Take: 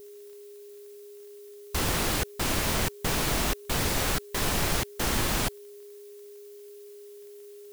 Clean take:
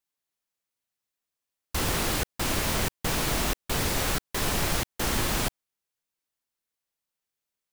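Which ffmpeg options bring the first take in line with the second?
-af "adeclick=t=4,bandreject=f=410:w=30,agate=range=-21dB:threshold=-39dB,asetnsamples=n=441:p=0,asendcmd='5.88 volume volume -11dB',volume=0dB"

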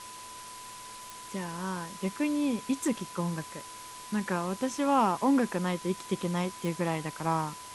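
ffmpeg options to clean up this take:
-af "adeclick=t=4,bandreject=f=109:t=h:w=4,bandreject=f=218:t=h:w=4,bandreject=f=327:t=h:w=4,bandreject=f=436:t=h:w=4,bandreject=f=1k:w=30,afwtdn=0.0056"

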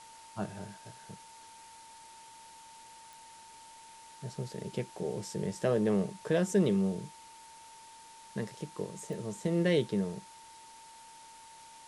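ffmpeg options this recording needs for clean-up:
-af "adeclick=t=4,bandreject=f=900:w=30,afftdn=nr=24:nf=-53"

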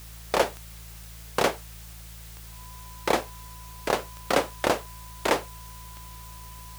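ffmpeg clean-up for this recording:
-af "adeclick=t=4,bandreject=f=55.5:t=h:w=4,bandreject=f=111:t=h:w=4,bandreject=f=166.5:t=h:w=4,bandreject=f=1k:w=30,afwtdn=0.004"

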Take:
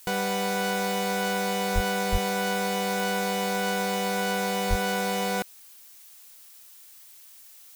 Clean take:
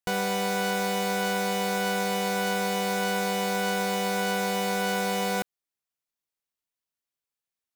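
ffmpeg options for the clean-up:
-filter_complex "[0:a]adeclick=t=4,asplit=3[a][b][c];[a]afade=t=out:st=1.74:d=0.02[d];[b]highpass=f=140:w=0.5412,highpass=f=140:w=1.3066,afade=t=in:st=1.74:d=0.02,afade=t=out:st=1.86:d=0.02[e];[c]afade=t=in:st=1.86:d=0.02[f];[d][e][f]amix=inputs=3:normalize=0,asplit=3[g][h][i];[g]afade=t=out:st=2.11:d=0.02[j];[h]highpass=f=140:w=0.5412,highpass=f=140:w=1.3066,afade=t=in:st=2.11:d=0.02,afade=t=out:st=2.23:d=0.02[k];[i]afade=t=in:st=2.23:d=0.02[l];[j][k][l]amix=inputs=3:normalize=0,asplit=3[m][n][o];[m]afade=t=out:st=4.69:d=0.02[p];[n]highpass=f=140:w=0.5412,highpass=f=140:w=1.3066,afade=t=in:st=4.69:d=0.02,afade=t=out:st=4.81:d=0.02[q];[o]afade=t=in:st=4.81:d=0.02[r];[p][q][r]amix=inputs=3:normalize=0,afftdn=nr=30:nf=-50"

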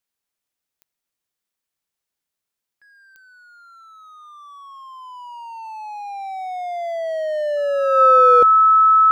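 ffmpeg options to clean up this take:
-af "adeclick=t=4,bandreject=f=1.3k:w=30"

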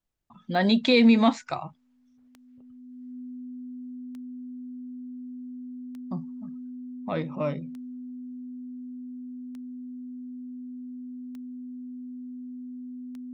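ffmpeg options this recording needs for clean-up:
-af "adeclick=t=4,bandreject=f=250:w=30"

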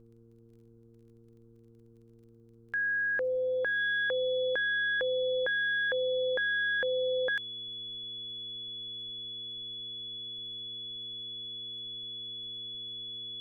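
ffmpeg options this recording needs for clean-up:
-af "adeclick=t=4,bandreject=f=115.2:t=h:w=4,bandreject=f=230.4:t=h:w=4,bandreject=f=345.6:t=h:w=4,bandreject=f=460.8:t=h:w=4,bandreject=f=3.4k:w=30,agate=range=-21dB:threshold=-50dB"

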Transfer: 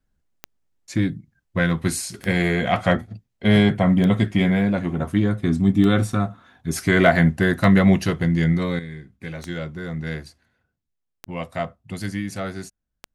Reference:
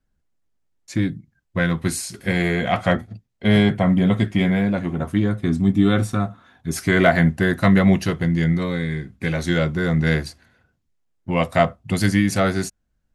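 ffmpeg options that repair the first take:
-af "adeclick=t=4,asetnsamples=n=441:p=0,asendcmd='8.79 volume volume 10dB',volume=0dB"

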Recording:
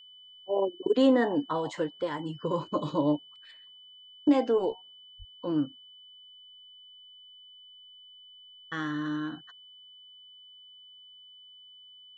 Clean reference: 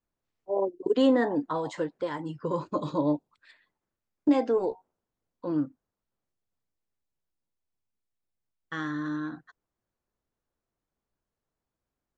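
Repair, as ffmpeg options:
-filter_complex "[0:a]bandreject=f=3k:w=30,asplit=3[a][b][c];[a]afade=t=out:st=5.18:d=0.02[d];[b]highpass=f=140:w=0.5412,highpass=f=140:w=1.3066,afade=t=in:st=5.18:d=0.02,afade=t=out:st=5.3:d=0.02[e];[c]afade=t=in:st=5.3:d=0.02[f];[d][e][f]amix=inputs=3:normalize=0"

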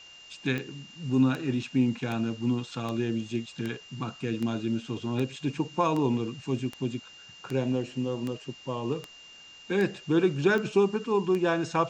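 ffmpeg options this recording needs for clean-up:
-af "adeclick=t=4,bandreject=f=2.8k:w=30,afftdn=nr=23:nf=-50"

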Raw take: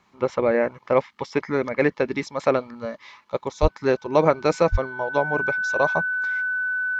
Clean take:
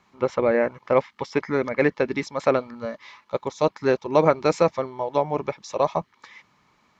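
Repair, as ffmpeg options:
-filter_complex "[0:a]bandreject=f=1.5k:w=30,asplit=3[a][b][c];[a]afade=t=out:st=3.61:d=0.02[d];[b]highpass=f=140:w=0.5412,highpass=f=140:w=1.3066,afade=t=in:st=3.61:d=0.02,afade=t=out:st=3.73:d=0.02[e];[c]afade=t=in:st=3.73:d=0.02[f];[d][e][f]amix=inputs=3:normalize=0,asplit=3[g][h][i];[g]afade=t=out:st=4.71:d=0.02[j];[h]highpass=f=140:w=0.5412,highpass=f=140:w=1.3066,afade=t=in:st=4.71:d=0.02,afade=t=out:st=4.83:d=0.02[k];[i]afade=t=in:st=4.83:d=0.02[l];[j][k][l]amix=inputs=3:normalize=0"

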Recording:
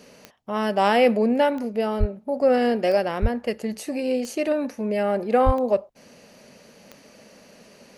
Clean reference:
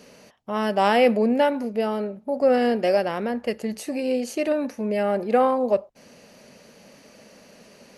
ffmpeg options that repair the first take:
-filter_complex "[0:a]adeclick=t=4,asplit=3[a][b][c];[a]afade=t=out:st=1.99:d=0.02[d];[b]highpass=f=140:w=0.5412,highpass=f=140:w=1.3066,afade=t=in:st=1.99:d=0.02,afade=t=out:st=2.11:d=0.02[e];[c]afade=t=in:st=2.11:d=0.02[f];[d][e][f]amix=inputs=3:normalize=0,asplit=3[g][h][i];[g]afade=t=out:st=3.21:d=0.02[j];[h]highpass=f=140:w=0.5412,highpass=f=140:w=1.3066,afade=t=in:st=3.21:d=0.02,afade=t=out:st=3.33:d=0.02[k];[i]afade=t=in:st=3.33:d=0.02[l];[j][k][l]amix=inputs=3:normalize=0,asplit=3[m][n][o];[m]afade=t=out:st=5.45:d=0.02[p];[n]highpass=f=140:w=0.5412,highpass=f=140:w=1.3066,afade=t=in:st=5.45:d=0.02,afade=t=out:st=5.57:d=0.02[q];[o]afade=t=in:st=5.57:d=0.02[r];[p][q][r]amix=inputs=3:normalize=0"

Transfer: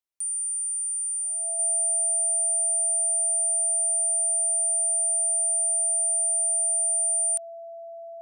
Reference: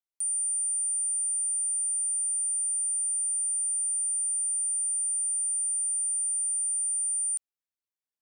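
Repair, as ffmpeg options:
-af "bandreject=f=670:w=30,asetnsamples=n=441:p=0,asendcmd='1.59 volume volume -4.5dB',volume=0dB"

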